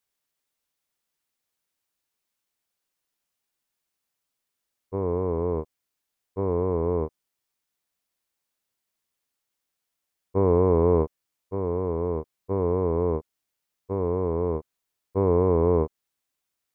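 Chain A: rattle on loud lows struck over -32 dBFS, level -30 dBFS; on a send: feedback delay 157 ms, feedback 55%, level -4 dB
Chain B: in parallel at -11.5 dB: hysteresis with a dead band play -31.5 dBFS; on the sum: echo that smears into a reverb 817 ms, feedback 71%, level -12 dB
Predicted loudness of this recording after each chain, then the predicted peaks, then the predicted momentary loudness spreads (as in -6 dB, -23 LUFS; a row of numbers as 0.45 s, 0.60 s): -24.5 LUFS, -24.0 LUFS; -5.5 dBFS, -7.0 dBFS; 16 LU, 20 LU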